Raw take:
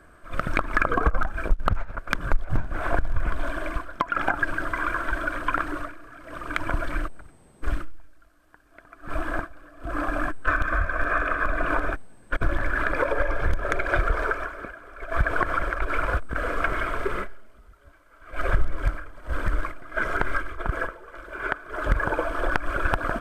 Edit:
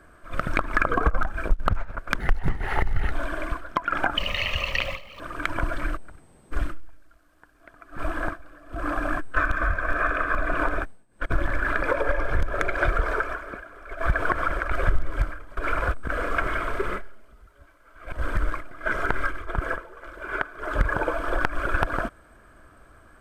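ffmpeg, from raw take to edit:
-filter_complex "[0:a]asplit=9[s0][s1][s2][s3][s4][s5][s6][s7][s8];[s0]atrim=end=2.194[s9];[s1]atrim=start=2.19:end=3.36,asetpts=PTS-STARTPTS,asetrate=55566,aresample=44100[s10];[s2]atrim=start=3.356:end=4.414[s11];[s3]atrim=start=4.41:end=6.31,asetpts=PTS-STARTPTS,asetrate=81144,aresample=44100,atrim=end_sample=45538,asetpts=PTS-STARTPTS[s12];[s4]atrim=start=6.306:end=12.18,asetpts=PTS-STARTPTS,afade=t=out:st=5.614:d=0.26:silence=0.125893[s13];[s5]atrim=start=12.18:end=15.832,asetpts=PTS-STARTPTS,afade=t=in:d=0.26:silence=0.125893[s14];[s6]atrim=start=18.378:end=19.232[s15];[s7]atrim=start=15.828:end=18.382[s16];[s8]atrim=start=19.228[s17];[s9][s10]acrossfade=d=0.004:c1=hsin:c2=hsin[s18];[s18][s11]acrossfade=d=0.004:c1=hsin:c2=hsin[s19];[s19][s12]acrossfade=d=0.004:c1=hsin:c2=hsin[s20];[s13][s14]concat=n=2:v=0:a=1[s21];[s20][s21]acrossfade=d=0.004:c1=hsin:c2=hsin[s22];[s22][s15]acrossfade=d=0.004:c1=hsin:c2=hsin[s23];[s23][s16]acrossfade=d=0.004:c1=hsin:c2=hsin[s24];[s24][s17]acrossfade=d=0.004:c1=hsin:c2=hsin"

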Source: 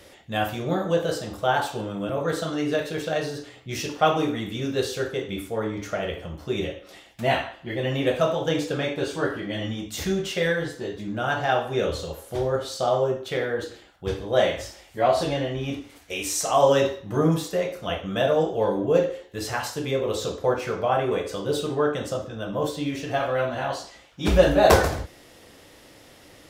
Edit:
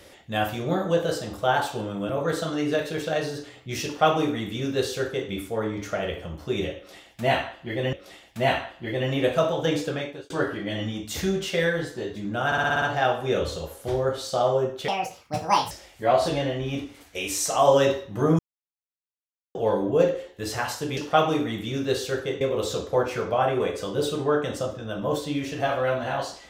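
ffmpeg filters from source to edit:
-filter_complex "[0:a]asplit=15[s0][s1][s2][s3][s4][s5][s6][s7][s8][s9][s10][s11][s12][s13][s14];[s0]atrim=end=7.932[s15];[s1]atrim=start=6.758:end=9.13,asetpts=PTS-STARTPTS,afade=t=out:st=1.912:d=0.46[s16];[s2]atrim=start=9.13:end=11.352,asetpts=PTS-STARTPTS,afade=t=in:d=0.004:c=hsin[s17];[s3]atrim=start=11.288:end=11.352[s18];[s4]atrim=start=11.288:end=11.352[s19];[s5]atrim=start=11.288:end=11.352[s20];[s6]atrim=start=11.288:end=11.352[s21];[s7]atrim=start=11.288:end=11.352[s22];[s8]atrim=start=11.288:end=13.354[s23];[s9]atrim=start=13.35:end=14.66,asetpts=PTS-STARTPTS,asetrate=69678,aresample=44100[s24];[s10]atrim=start=14.656:end=17.34,asetpts=PTS-STARTPTS,afade=t=out:st=2.68:d=0.004:c=hsin[s25];[s11]atrim=start=17.34:end=18.5,asetpts=PTS-STARTPTS,volume=0[s26];[s12]atrim=start=18.5:end=19.922,asetpts=PTS-STARTPTS,afade=t=in:d=0.004:c=hsin[s27];[s13]atrim=start=3.848:end=5.292[s28];[s14]atrim=start=19.918[s29];[s16][s17]concat=n=2:v=0:a=1[s30];[s15][s30]acrossfade=d=0.004:c1=hsin:c2=hsin[s31];[s31][s18]acrossfade=d=0.004:c1=hsin:c2=hsin[s32];[s32][s19]acrossfade=d=0.004:c1=hsin:c2=hsin[s33];[s33][s20]acrossfade=d=0.004:c1=hsin:c2=hsin[s34];[s34][s21]acrossfade=d=0.004:c1=hsin:c2=hsin[s35];[s35][s22]acrossfade=d=0.004:c1=hsin:c2=hsin[s36];[s36][s23]acrossfade=d=0.004:c1=hsin:c2=hsin[s37];[s37][s24]acrossfade=d=0.004:c1=hsin:c2=hsin[s38];[s25][s26][s27]concat=n=3:v=0:a=1[s39];[s38][s39]acrossfade=d=0.004:c1=hsin:c2=hsin[s40];[s40][s28]acrossfade=d=0.004:c1=hsin:c2=hsin[s41];[s41][s29]acrossfade=d=0.004:c1=hsin:c2=hsin"

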